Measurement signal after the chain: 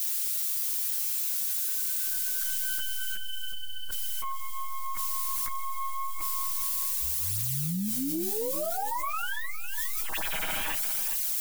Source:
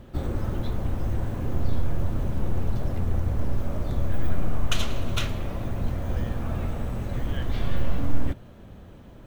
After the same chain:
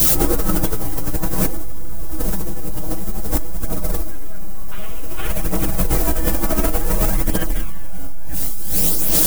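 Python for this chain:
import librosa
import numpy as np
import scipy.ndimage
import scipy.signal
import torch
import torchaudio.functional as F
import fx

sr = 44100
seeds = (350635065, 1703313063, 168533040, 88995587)

p1 = fx.tracing_dist(x, sr, depth_ms=0.48)
p2 = scipy.signal.sosfilt(scipy.signal.butter(6, 3200.0, 'lowpass', fs=sr, output='sos'), p1)
p3 = fx.peak_eq(p2, sr, hz=120.0, db=-12.0, octaves=0.58)
p4 = p3 + 0.94 * np.pad(p3, (int(6.3 * sr / 1000.0), 0))[:len(p3)]
p5 = fx.rider(p4, sr, range_db=5, speed_s=0.5)
p6 = fx.dmg_noise_colour(p5, sr, seeds[0], colour='violet', level_db=-34.0)
p7 = fx.chorus_voices(p6, sr, voices=2, hz=0.27, base_ms=13, depth_ms=3.7, mix_pct=65)
p8 = p7 + fx.echo_feedback(p7, sr, ms=410, feedback_pct=26, wet_db=-15.5, dry=0)
p9 = fx.env_flatten(p8, sr, amount_pct=100)
y = F.gain(torch.from_numpy(p9), -11.5).numpy()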